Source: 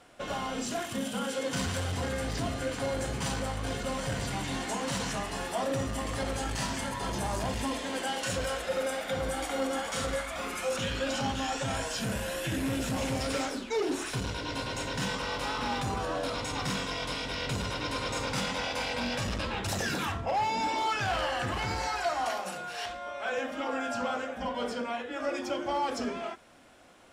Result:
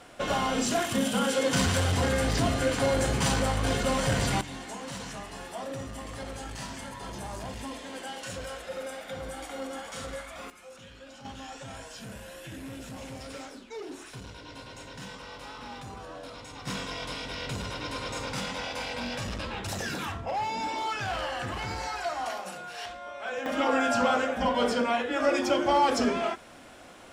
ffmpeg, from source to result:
-af "asetnsamples=n=441:p=0,asendcmd='4.41 volume volume -6dB;10.5 volume volume -17dB;11.25 volume volume -10dB;16.67 volume volume -2dB;23.46 volume volume 7.5dB',volume=6.5dB"

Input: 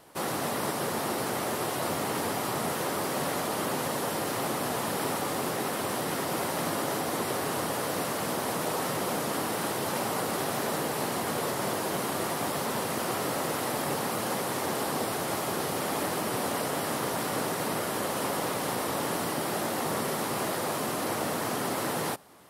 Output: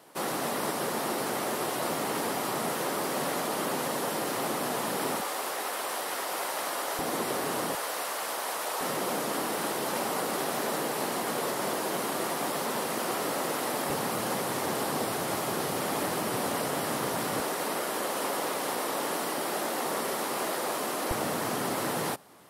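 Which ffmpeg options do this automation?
-af "asetnsamples=n=441:p=0,asendcmd='5.21 highpass f 570;6.99 highpass f 170;7.75 highpass f 630;8.81 highpass f 200;13.9 highpass f 85;17.4 highpass f 280;21.11 highpass f 89',highpass=170"

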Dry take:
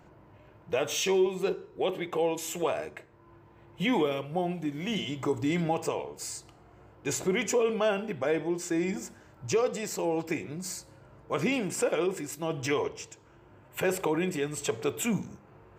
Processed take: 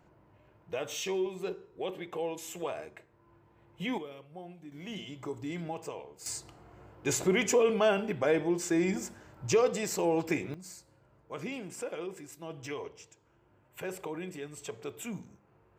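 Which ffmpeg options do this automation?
-af "asetnsamples=n=441:p=0,asendcmd='3.98 volume volume -16dB;4.72 volume volume -9.5dB;6.26 volume volume 1dB;10.54 volume volume -10.5dB',volume=-7dB"

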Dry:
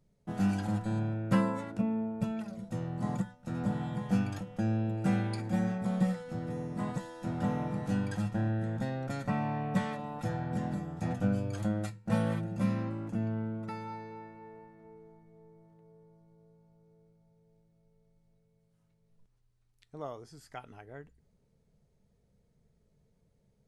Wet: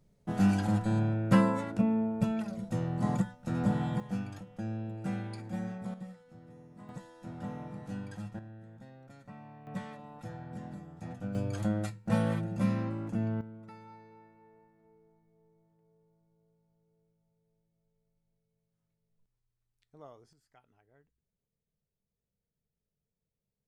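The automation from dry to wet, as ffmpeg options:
-af "asetnsamples=n=441:p=0,asendcmd='4 volume volume -6.5dB;5.94 volume volume -16dB;6.89 volume volume -8.5dB;8.39 volume volume -17.5dB;9.67 volume volume -9dB;11.35 volume volume 1dB;13.41 volume volume -10.5dB;20.33 volume volume -19dB',volume=3.5dB"

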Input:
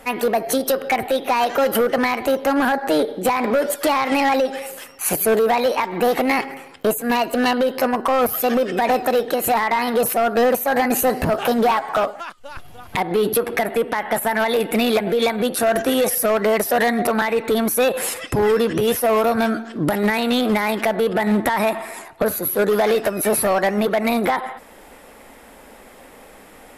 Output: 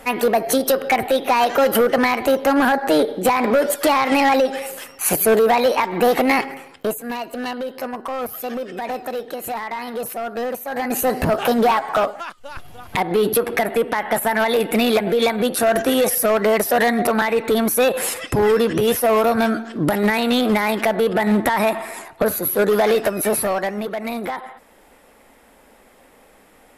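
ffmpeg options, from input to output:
-af "volume=11.5dB,afade=t=out:st=6.34:d=0.8:silence=0.298538,afade=t=in:st=10.7:d=0.54:silence=0.334965,afade=t=out:st=23.07:d=0.76:silence=0.398107"

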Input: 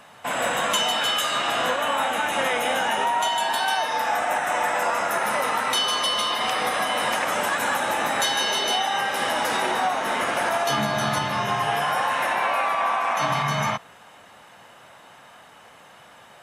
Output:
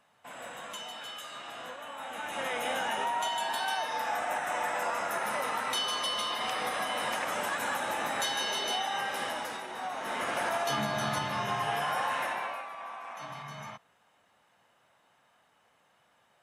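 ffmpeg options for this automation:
-af "volume=2dB,afade=t=in:st=1.96:d=0.72:silence=0.298538,afade=t=out:st=9.14:d=0.53:silence=0.334965,afade=t=in:st=9.67:d=0.67:silence=0.298538,afade=t=out:st=12.15:d=0.51:silence=0.266073"

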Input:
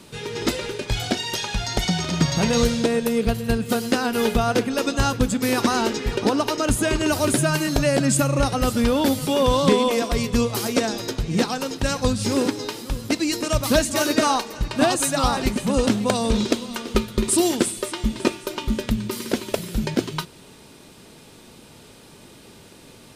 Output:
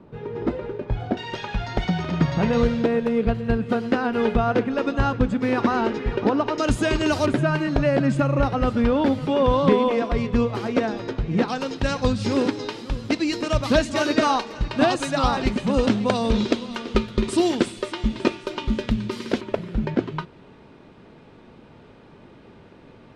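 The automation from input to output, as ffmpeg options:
-af "asetnsamples=n=441:p=0,asendcmd='1.17 lowpass f 2100;6.58 lowpass f 4900;7.26 lowpass f 2200;11.48 lowpass f 4000;19.41 lowpass f 1900',lowpass=1k"

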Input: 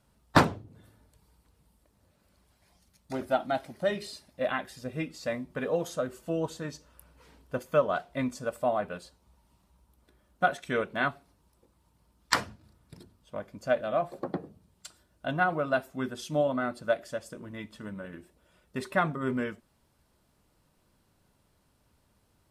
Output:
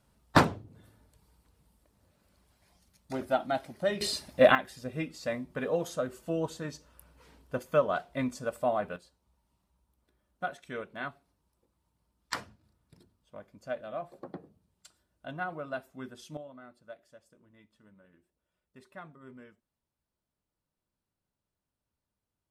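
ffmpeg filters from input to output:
-af "asetnsamples=n=441:p=0,asendcmd='4.01 volume volume 10.5dB;4.55 volume volume -1dB;8.96 volume volume -9.5dB;16.37 volume volume -20dB',volume=-1dB"

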